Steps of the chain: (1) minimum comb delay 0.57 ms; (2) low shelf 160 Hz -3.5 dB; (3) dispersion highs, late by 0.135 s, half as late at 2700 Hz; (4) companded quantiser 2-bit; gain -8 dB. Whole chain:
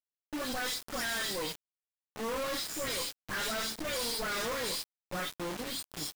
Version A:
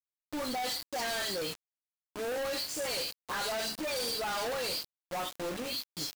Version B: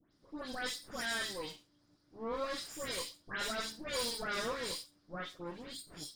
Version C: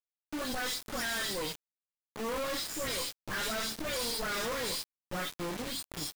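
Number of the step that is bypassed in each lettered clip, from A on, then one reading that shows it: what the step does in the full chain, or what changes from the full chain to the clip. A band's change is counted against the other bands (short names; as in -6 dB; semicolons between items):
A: 1, 500 Hz band +3.5 dB; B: 4, distortion -4 dB; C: 2, 125 Hz band +2.0 dB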